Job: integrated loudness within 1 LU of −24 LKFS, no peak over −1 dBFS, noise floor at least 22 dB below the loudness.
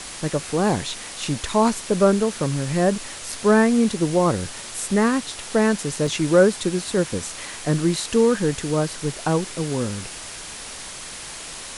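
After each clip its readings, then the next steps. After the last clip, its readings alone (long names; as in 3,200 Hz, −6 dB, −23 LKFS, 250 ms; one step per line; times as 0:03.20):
number of dropouts 1; longest dropout 3.2 ms; background noise floor −36 dBFS; target noise floor −44 dBFS; integrated loudness −21.5 LKFS; sample peak −3.5 dBFS; target loudness −24.0 LKFS
→ repair the gap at 0:06.07, 3.2 ms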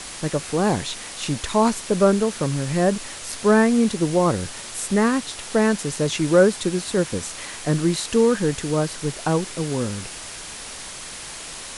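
number of dropouts 0; background noise floor −36 dBFS; target noise floor −44 dBFS
→ noise reduction from a noise print 8 dB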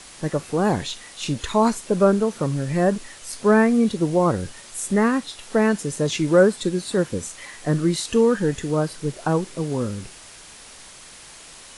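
background noise floor −44 dBFS; integrated loudness −22.0 LKFS; sample peak −3.5 dBFS; target loudness −24.0 LKFS
→ level −2 dB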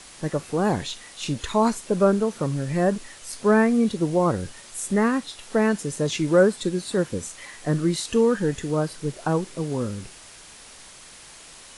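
integrated loudness −24.0 LKFS; sample peak −5.5 dBFS; background noise floor −46 dBFS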